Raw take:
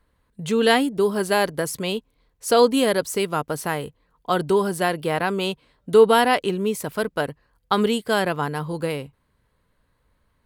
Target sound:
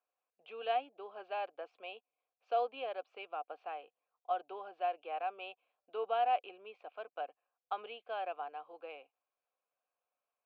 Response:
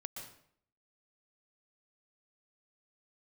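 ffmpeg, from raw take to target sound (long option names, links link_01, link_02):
-filter_complex "[0:a]asplit=3[link_01][link_02][link_03];[link_01]bandpass=frequency=730:width_type=q:width=8,volume=0dB[link_04];[link_02]bandpass=frequency=1090:width_type=q:width=8,volume=-6dB[link_05];[link_03]bandpass=frequency=2440:width_type=q:width=8,volume=-9dB[link_06];[link_04][link_05][link_06]amix=inputs=3:normalize=0,highpass=frequency=370:width=0.5412,highpass=frequency=370:width=1.3066,equalizer=frequency=410:width_type=q:width=4:gain=-7,equalizer=frequency=640:width_type=q:width=4:gain=-6,equalizer=frequency=1100:width_type=q:width=4:gain=-10,lowpass=frequency=3300:width=0.5412,lowpass=frequency=3300:width=1.3066,volume=-3dB"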